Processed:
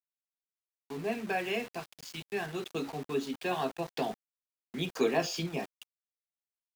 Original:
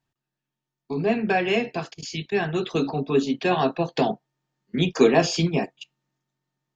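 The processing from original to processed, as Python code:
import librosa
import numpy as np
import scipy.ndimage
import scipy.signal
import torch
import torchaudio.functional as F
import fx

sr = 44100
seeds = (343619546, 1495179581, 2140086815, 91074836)

y = np.where(np.abs(x) >= 10.0 ** (-33.0 / 20.0), x, 0.0)
y = fx.low_shelf(y, sr, hz=310.0, db=-6.0)
y = F.gain(torch.from_numpy(y), -9.0).numpy()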